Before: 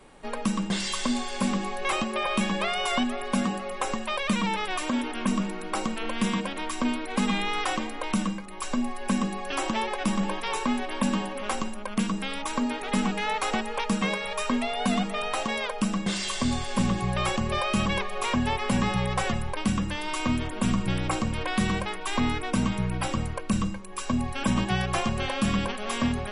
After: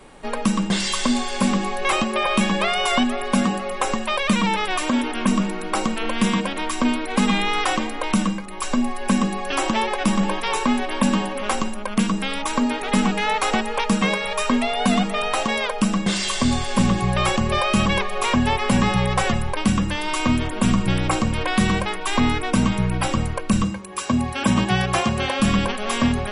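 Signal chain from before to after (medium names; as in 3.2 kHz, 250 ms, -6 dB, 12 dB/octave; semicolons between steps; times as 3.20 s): 23.64–25.40 s: high-pass 72 Hz; trim +6.5 dB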